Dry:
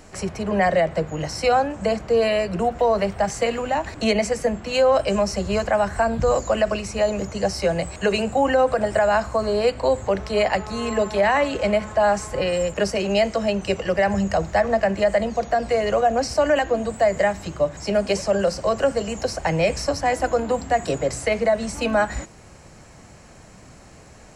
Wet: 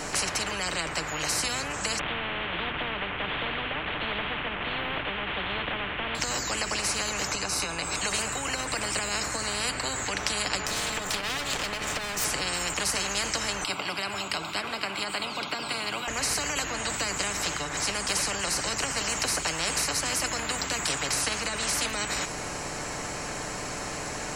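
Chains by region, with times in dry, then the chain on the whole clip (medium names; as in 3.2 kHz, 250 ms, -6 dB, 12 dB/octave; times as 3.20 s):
1.99–6.15 s: one-bit delta coder 16 kbps, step -27 dBFS + tremolo 1.4 Hz, depth 64%
7.31–8.00 s: comb 0.8 ms, depth 59% + compression 4:1, threshold -31 dBFS
10.66–12.25 s: comb filter that takes the minimum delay 1.6 ms + compression, threshold -31 dBFS
13.64–16.08 s: high-pass 480 Hz + static phaser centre 1.8 kHz, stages 6
whole clip: dynamic bell 3.4 kHz, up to -5 dB, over -38 dBFS, Q 1; comb 6.8 ms, depth 39%; spectrum-flattening compressor 10:1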